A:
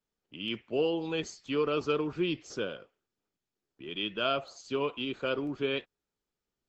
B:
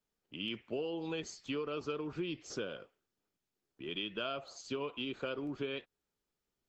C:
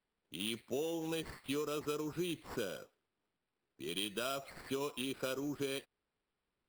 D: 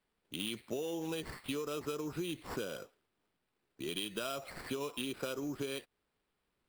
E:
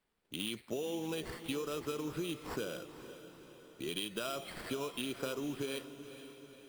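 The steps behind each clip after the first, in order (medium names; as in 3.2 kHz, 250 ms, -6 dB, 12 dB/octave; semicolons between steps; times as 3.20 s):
compression, threshold -35 dBFS, peak gain reduction 11 dB
sample-rate reducer 6.4 kHz, jitter 0%
compression 2.5:1, threshold -42 dBFS, peak gain reduction 6.5 dB; trim +5 dB
echo that smears into a reverb 477 ms, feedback 54%, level -12 dB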